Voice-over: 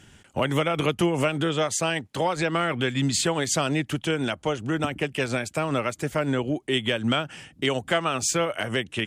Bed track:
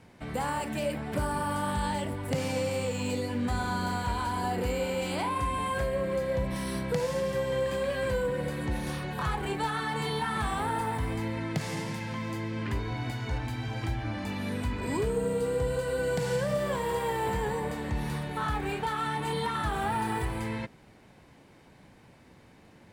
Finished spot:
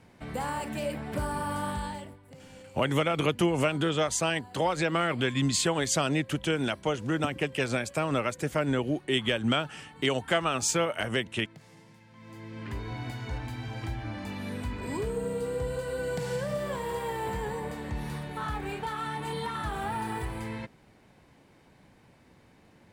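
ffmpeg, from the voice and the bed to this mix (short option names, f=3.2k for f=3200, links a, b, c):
-filter_complex "[0:a]adelay=2400,volume=-2.5dB[a];[1:a]volume=16dB,afade=t=out:st=1.65:d=0.55:silence=0.112202,afade=t=in:st=12.13:d=0.79:silence=0.133352[b];[a][b]amix=inputs=2:normalize=0"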